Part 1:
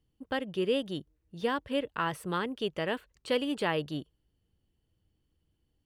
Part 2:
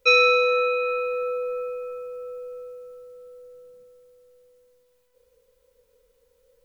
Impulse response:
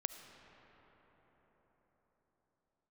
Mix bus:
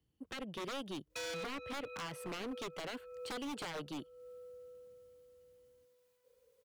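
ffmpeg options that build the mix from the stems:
-filter_complex "[0:a]highpass=58,volume=-3dB,asplit=2[link_01][link_02];[1:a]acrossover=split=230|3000[link_03][link_04][link_05];[link_04]acompressor=threshold=-28dB:ratio=2.5[link_06];[link_03][link_06][link_05]amix=inputs=3:normalize=0,highpass=83,adelay=1100,volume=-7dB[link_07];[link_02]apad=whole_len=341431[link_08];[link_07][link_08]sidechaincompress=threshold=-50dB:ratio=5:attack=11:release=254[link_09];[link_01][link_09]amix=inputs=2:normalize=0,acrossover=split=200|1100[link_10][link_11][link_12];[link_10]acompressor=threshold=-52dB:ratio=4[link_13];[link_11]acompressor=threshold=-34dB:ratio=4[link_14];[link_12]acompressor=threshold=-42dB:ratio=4[link_15];[link_13][link_14][link_15]amix=inputs=3:normalize=0,aeval=exprs='0.0158*(abs(mod(val(0)/0.0158+3,4)-2)-1)':channel_layout=same"

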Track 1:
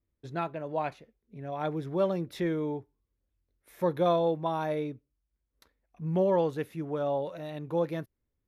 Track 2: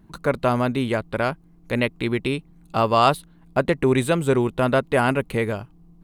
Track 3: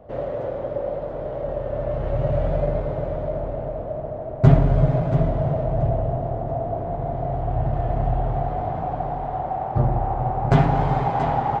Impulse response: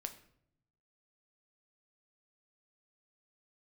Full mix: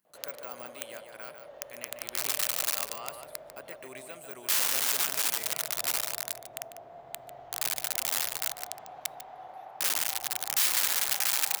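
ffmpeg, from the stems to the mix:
-filter_complex "[0:a]adelay=1650,volume=-12.5dB[link_01];[1:a]deesser=0.85,bandreject=frequency=3700:width=7.1,volume=-4dB,asplit=2[link_02][link_03];[link_03]volume=-8dB[link_04];[2:a]bandreject=frequency=50:width_type=h:width=6,bandreject=frequency=100:width_type=h:width=6,bandreject=frequency=150:width_type=h:width=6,bandreject=frequency=200:width_type=h:width=6,aeval=exprs='(mod(6.31*val(0)+1,2)-1)/6.31':channel_layout=same,adelay=50,volume=0.5dB,asplit=3[link_05][link_06][link_07];[link_06]volume=-22.5dB[link_08];[link_07]volume=-12dB[link_09];[3:a]atrim=start_sample=2205[link_10];[link_08][link_10]afir=irnorm=-1:irlink=0[link_11];[link_04][link_09]amix=inputs=2:normalize=0,aecho=0:1:147:1[link_12];[link_01][link_02][link_05][link_11][link_12]amix=inputs=5:normalize=0,aderivative"

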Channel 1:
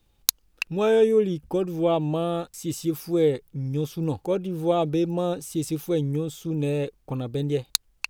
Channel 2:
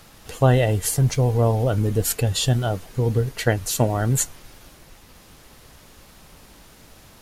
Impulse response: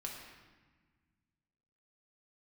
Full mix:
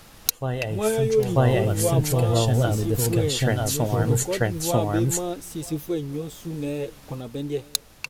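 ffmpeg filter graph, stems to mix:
-filter_complex "[0:a]highshelf=frequency=10000:gain=5,flanger=delay=2.4:depth=9:regen=36:speed=0.39:shape=sinusoidal,volume=1dB,asplit=3[link_01][link_02][link_03];[link_02]volume=-22dB[link_04];[1:a]volume=0dB,asplit=3[link_05][link_06][link_07];[link_06]volume=-22.5dB[link_08];[link_07]volume=-3.5dB[link_09];[link_03]apad=whole_len=317978[link_10];[link_05][link_10]sidechaincompress=threshold=-29dB:ratio=5:attack=5.5:release=812[link_11];[2:a]atrim=start_sample=2205[link_12];[link_08][link_12]afir=irnorm=-1:irlink=0[link_13];[link_04][link_09]amix=inputs=2:normalize=0,aecho=0:1:941:1[link_14];[link_01][link_11][link_13][link_14]amix=inputs=4:normalize=0"

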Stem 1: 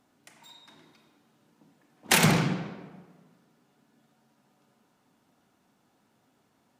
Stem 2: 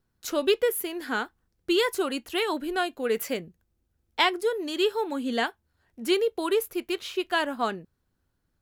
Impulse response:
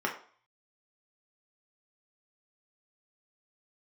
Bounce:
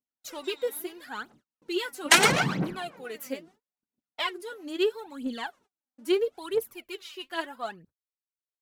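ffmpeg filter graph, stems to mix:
-filter_complex "[0:a]lowpass=10000,acrossover=split=470[link_01][link_02];[link_01]aeval=exprs='val(0)*(1-0.7/2+0.7/2*cos(2*PI*7.3*n/s))':channel_layout=same[link_03];[link_02]aeval=exprs='val(0)*(1-0.7/2-0.7/2*cos(2*PI*7.3*n/s))':channel_layout=same[link_04];[link_03][link_04]amix=inputs=2:normalize=0,volume=2dB,asplit=2[link_05][link_06];[link_06]volume=-18.5dB[link_07];[1:a]volume=-10.5dB[link_08];[2:a]atrim=start_sample=2205[link_09];[link_07][link_09]afir=irnorm=-1:irlink=0[link_10];[link_05][link_08][link_10]amix=inputs=3:normalize=0,agate=range=-37dB:threshold=-58dB:ratio=16:detection=peak,lowshelf=frequency=79:gain=-12,aphaser=in_gain=1:out_gain=1:delay=4:decay=0.74:speed=0.76:type=triangular"

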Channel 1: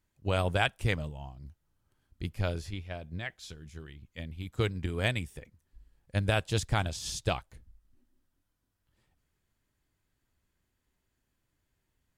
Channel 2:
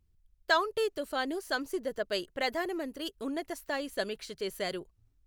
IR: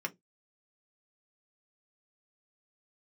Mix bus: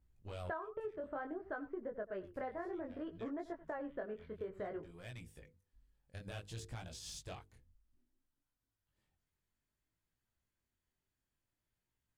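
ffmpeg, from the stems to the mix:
-filter_complex "[0:a]bandreject=frequency=50:width_type=h:width=6,bandreject=frequency=100:width_type=h:width=6,bandreject=frequency=150:width_type=h:width=6,bandreject=frequency=200:width_type=h:width=6,bandreject=frequency=250:width_type=h:width=6,bandreject=frequency=300:width_type=h:width=6,bandreject=frequency=350:width_type=h:width=6,bandreject=frequency=400:width_type=h:width=6,bandreject=frequency=450:width_type=h:width=6,bandreject=frequency=500:width_type=h:width=6,alimiter=limit=-21.5dB:level=0:latency=1:release=133,asoftclip=type=tanh:threshold=-29dB,volume=-7dB[link_01];[1:a]lowpass=frequency=1600:width=0.5412,lowpass=frequency=1600:width=1.3066,volume=0.5dB,asplit=3[link_02][link_03][link_04];[link_03]volume=-18dB[link_05];[link_04]apad=whole_len=536896[link_06];[link_01][link_06]sidechaincompress=threshold=-40dB:ratio=8:attack=11:release=783[link_07];[link_05]aecho=0:1:87:1[link_08];[link_07][link_02][link_08]amix=inputs=3:normalize=0,flanger=delay=17:depth=6.5:speed=0.59,acompressor=threshold=-39dB:ratio=8"

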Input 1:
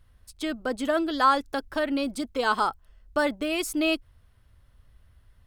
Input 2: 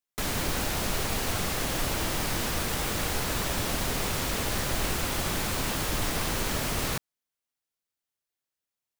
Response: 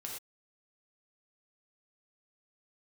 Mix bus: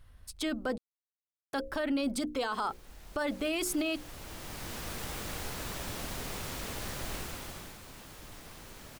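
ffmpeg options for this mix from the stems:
-filter_complex "[0:a]bandreject=frequency=60:width_type=h:width=6,bandreject=frequency=120:width_type=h:width=6,bandreject=frequency=180:width_type=h:width=6,bandreject=frequency=240:width_type=h:width=6,bandreject=frequency=300:width_type=h:width=6,bandreject=frequency=360:width_type=h:width=6,bandreject=frequency=420:width_type=h:width=6,bandreject=frequency=480:width_type=h:width=6,bandreject=frequency=540:width_type=h:width=6,alimiter=limit=-20dB:level=0:latency=1:release=167,volume=2.5dB,asplit=3[link_01][link_02][link_03];[link_01]atrim=end=0.78,asetpts=PTS-STARTPTS,afade=type=out:start_time=0.776:duration=0.004:curve=hsin[link_04];[link_02]atrim=start=0.78:end=1.53,asetpts=PTS-STARTPTS,volume=0[link_05];[link_03]atrim=start=1.53,asetpts=PTS-STARTPTS,afade=type=in:duration=0.004:curve=hsin[link_06];[link_04][link_05][link_06]concat=n=3:v=0:a=1,asplit=2[link_07][link_08];[1:a]adelay=2300,volume=-9.5dB,afade=type=in:start_time=3.15:duration=0.61:silence=0.298538,afade=type=out:start_time=7.12:duration=0.66:silence=0.298538[link_09];[link_08]apad=whole_len=498056[link_10];[link_09][link_10]sidechaincompress=threshold=-35dB:ratio=4:attack=41:release=1050[link_11];[link_07][link_11]amix=inputs=2:normalize=0,alimiter=limit=-24dB:level=0:latency=1:release=12"

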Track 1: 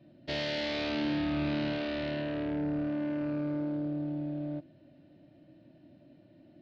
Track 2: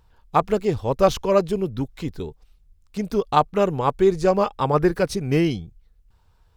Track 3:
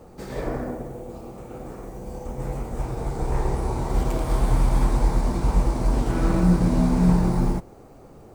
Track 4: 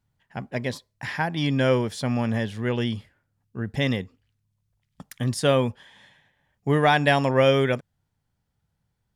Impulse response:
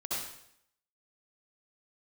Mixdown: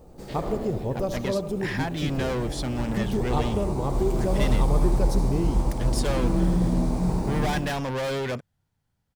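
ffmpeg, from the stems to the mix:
-filter_complex "[0:a]volume=-7.5dB[link_01];[1:a]equalizer=frequency=1900:width_type=o:width=2.9:gain=-14.5,acompressor=threshold=-29dB:ratio=3,volume=1.5dB,asplit=3[link_02][link_03][link_04];[link_03]volume=-12dB[link_05];[2:a]equalizer=frequency=1600:width_type=o:width=1.3:gain=-6.5,volume=-6.5dB,asplit=2[link_06][link_07];[link_07]volume=-5.5dB[link_08];[3:a]asoftclip=type=hard:threshold=-26.5dB,adelay=600,volume=0dB[link_09];[link_04]apad=whole_len=291909[link_10];[link_01][link_10]sidechaincompress=threshold=-45dB:ratio=8:attack=16:release=122[link_11];[4:a]atrim=start_sample=2205[link_12];[link_05][link_08]amix=inputs=2:normalize=0[link_13];[link_13][link_12]afir=irnorm=-1:irlink=0[link_14];[link_11][link_02][link_06][link_09][link_14]amix=inputs=5:normalize=0"

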